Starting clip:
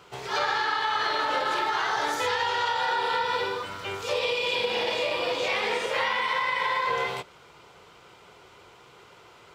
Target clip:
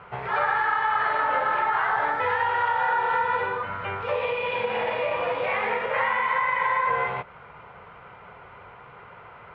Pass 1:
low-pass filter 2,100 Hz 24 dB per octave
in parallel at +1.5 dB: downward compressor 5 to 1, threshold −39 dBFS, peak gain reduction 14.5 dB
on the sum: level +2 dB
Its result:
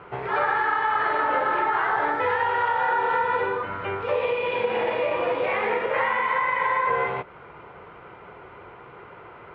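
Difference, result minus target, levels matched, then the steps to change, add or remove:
250 Hz band +6.0 dB
add after low-pass filter: parametric band 340 Hz −12.5 dB 0.66 octaves

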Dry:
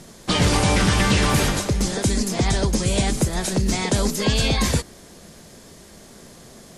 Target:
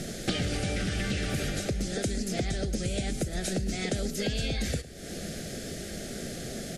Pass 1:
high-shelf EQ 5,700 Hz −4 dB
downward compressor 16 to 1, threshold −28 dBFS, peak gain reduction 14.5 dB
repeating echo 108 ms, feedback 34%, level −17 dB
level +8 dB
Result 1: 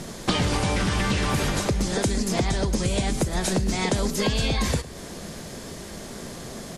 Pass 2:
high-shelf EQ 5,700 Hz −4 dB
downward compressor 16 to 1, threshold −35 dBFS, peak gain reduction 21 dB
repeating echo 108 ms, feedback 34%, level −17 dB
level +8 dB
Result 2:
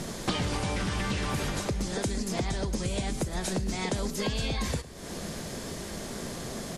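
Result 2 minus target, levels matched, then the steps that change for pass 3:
1,000 Hz band +6.5 dB
add first: Butterworth band-reject 1,000 Hz, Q 1.6

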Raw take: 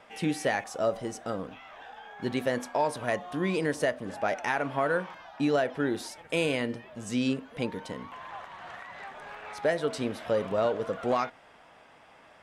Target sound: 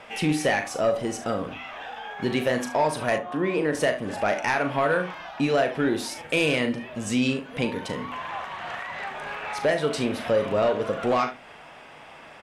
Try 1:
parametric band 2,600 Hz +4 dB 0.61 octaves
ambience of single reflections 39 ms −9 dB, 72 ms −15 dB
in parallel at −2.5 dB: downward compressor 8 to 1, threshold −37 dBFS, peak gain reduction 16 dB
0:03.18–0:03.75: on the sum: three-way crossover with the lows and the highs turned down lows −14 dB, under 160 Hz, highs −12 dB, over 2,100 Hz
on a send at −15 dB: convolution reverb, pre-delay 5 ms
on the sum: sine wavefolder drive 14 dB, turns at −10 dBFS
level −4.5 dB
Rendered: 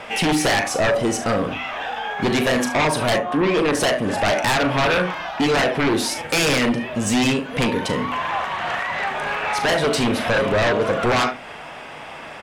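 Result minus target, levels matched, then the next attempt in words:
sine wavefolder: distortion +20 dB
parametric band 2,600 Hz +4 dB 0.61 octaves
ambience of single reflections 39 ms −9 dB, 72 ms −15 dB
in parallel at −2.5 dB: downward compressor 8 to 1, threshold −37 dBFS, peak gain reduction 16 dB
0:03.18–0:03.75: on the sum: three-way crossover with the lows and the highs turned down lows −14 dB, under 160 Hz, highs −12 dB, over 2,100 Hz
on a send at −15 dB: convolution reverb, pre-delay 5 ms
on the sum: sine wavefolder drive 4 dB, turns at −10 dBFS
level −4.5 dB

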